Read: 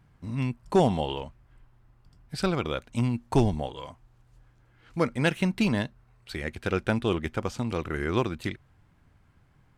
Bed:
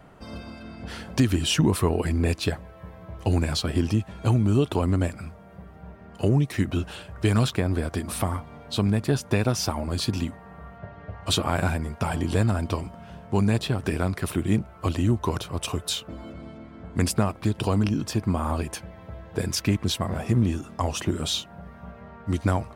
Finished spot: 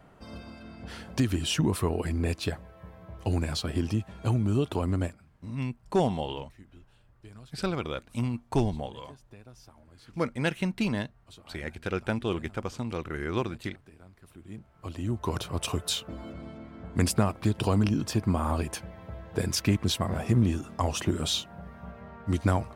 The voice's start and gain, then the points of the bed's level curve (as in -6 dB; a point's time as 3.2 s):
5.20 s, -3.5 dB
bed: 5.05 s -5 dB
5.29 s -28 dB
14.18 s -28 dB
15.42 s -1.5 dB